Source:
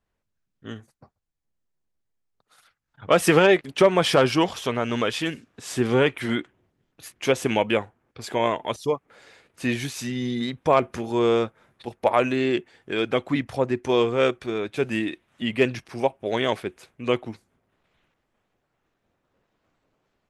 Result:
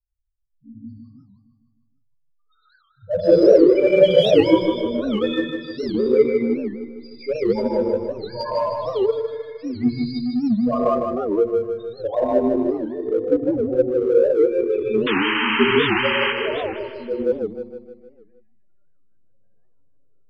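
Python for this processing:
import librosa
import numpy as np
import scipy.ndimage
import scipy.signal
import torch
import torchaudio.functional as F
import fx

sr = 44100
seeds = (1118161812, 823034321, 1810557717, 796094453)

p1 = scipy.signal.sosfilt(scipy.signal.ellip(4, 1.0, 60, 5000.0, 'lowpass', fs=sr, output='sos'), x)
p2 = fx.high_shelf(p1, sr, hz=2600.0, db=10.0)
p3 = fx.notch(p2, sr, hz=2800.0, q=6.2)
p4 = fx.spec_topn(p3, sr, count=2)
p5 = fx.rev_gated(p4, sr, seeds[0], gate_ms=210, shape='rising', drr_db=-7.0)
p6 = fx.backlash(p5, sr, play_db=-15.5)
p7 = p5 + (p6 * librosa.db_to_amplitude(-9.0))
p8 = fx.spec_paint(p7, sr, seeds[1], shape='noise', start_s=15.07, length_s=1.26, low_hz=830.0, high_hz=3200.0, level_db=-23.0)
p9 = p8 + fx.echo_feedback(p8, sr, ms=154, feedback_pct=55, wet_db=-6, dry=0)
y = fx.record_warp(p9, sr, rpm=78.0, depth_cents=250.0)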